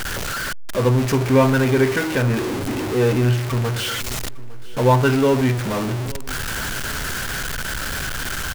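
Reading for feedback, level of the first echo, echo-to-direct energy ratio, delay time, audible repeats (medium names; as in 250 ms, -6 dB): 37%, -20.5 dB, -20.0 dB, 856 ms, 2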